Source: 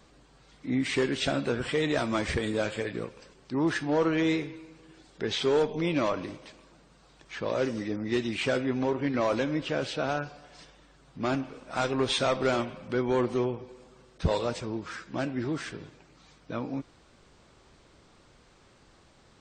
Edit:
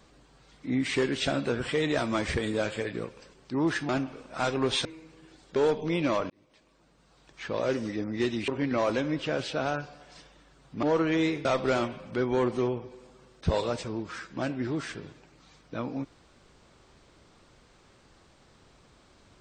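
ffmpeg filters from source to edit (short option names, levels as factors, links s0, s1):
-filter_complex "[0:a]asplit=8[s0][s1][s2][s3][s4][s5][s6][s7];[s0]atrim=end=3.892[s8];[s1]atrim=start=11.258:end=12.222[s9];[s2]atrim=start=4.508:end=5.222[s10];[s3]atrim=start=5.478:end=6.22,asetpts=PTS-STARTPTS,afade=t=out:st=0.738:d=0.004:c=hsin[s11];[s4]atrim=start=6.22:end=8.402,asetpts=PTS-STARTPTS,afade=t=in:d=1.16[s12];[s5]atrim=start=8.908:end=11.262[s13];[s6]atrim=start=3.888:end=4.512[s14];[s7]atrim=start=12.218[s15];[s8][s9]acrossfade=d=0.004:c1=hsin:c2=hsin[s16];[s16][s10]acrossfade=d=0.004:c1=hsin:c2=hsin[s17];[s11][s12]concat=n=2:v=0:a=1[s18];[s17][s18]acrossfade=d=0.004:c1=hsin:c2=hsin[s19];[s19][s13]acrossfade=d=0.004:c1=hsin:c2=hsin[s20];[s20][s14]acrossfade=d=0.004:c1=hsin:c2=hsin[s21];[s21][s15]acrossfade=d=0.004:c1=hsin:c2=hsin"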